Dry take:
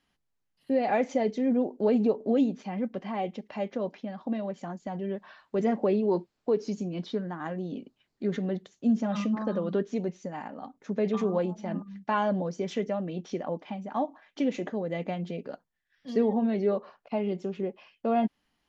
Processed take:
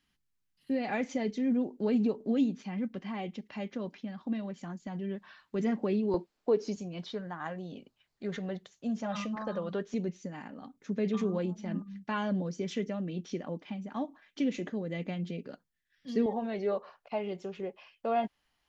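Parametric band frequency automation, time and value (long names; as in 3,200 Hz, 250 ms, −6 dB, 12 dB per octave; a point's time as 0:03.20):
parametric band −10.5 dB 1.5 octaves
630 Hz
from 0:06.14 100 Hz
from 0:06.76 280 Hz
from 0:09.94 750 Hz
from 0:16.26 240 Hz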